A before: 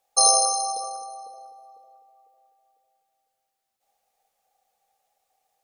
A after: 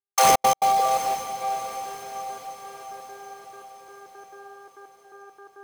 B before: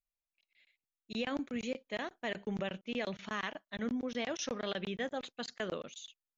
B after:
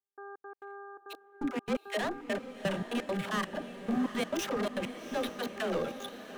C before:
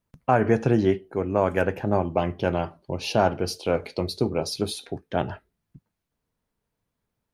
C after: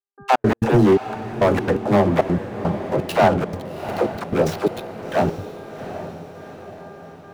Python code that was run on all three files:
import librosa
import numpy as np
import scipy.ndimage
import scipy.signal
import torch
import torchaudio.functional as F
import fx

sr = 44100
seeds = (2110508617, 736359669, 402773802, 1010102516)

y = scipy.signal.medfilt(x, 9)
y = scipy.signal.sosfilt(scipy.signal.butter(4, 110.0, 'highpass', fs=sr, output='sos'), y)
y = fx.dynamic_eq(y, sr, hz=2400.0, q=1.2, threshold_db=-41.0, ratio=4.0, max_db=-4)
y = fx.leveller(y, sr, passes=3)
y = fx.dispersion(y, sr, late='lows', ms=85.0, hz=340.0)
y = fx.dmg_buzz(y, sr, base_hz=400.0, harmonics=4, level_db=-45.0, tilt_db=-3, odd_only=False)
y = fx.step_gate(y, sr, bpm=170, pattern='..xx.x.xxxx.x.', floor_db=-60.0, edge_ms=4.5)
y = fx.echo_diffused(y, sr, ms=761, feedback_pct=53, wet_db=-11.0)